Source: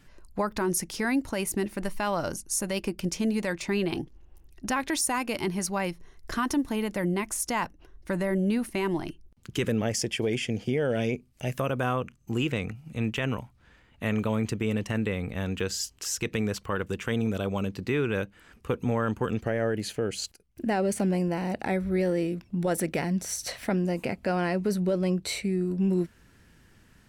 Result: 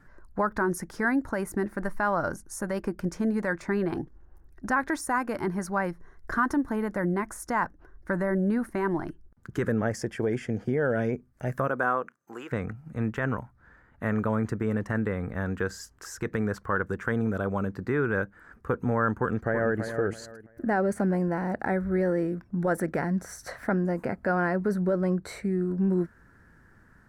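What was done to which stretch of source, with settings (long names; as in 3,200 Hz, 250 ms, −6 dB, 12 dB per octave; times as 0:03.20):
0:11.67–0:12.51: high-pass filter 200 Hz → 770 Hz
0:19.19–0:19.80: delay throw 330 ms, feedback 25%, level −8 dB
whole clip: high shelf with overshoot 2,100 Hz −10 dB, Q 3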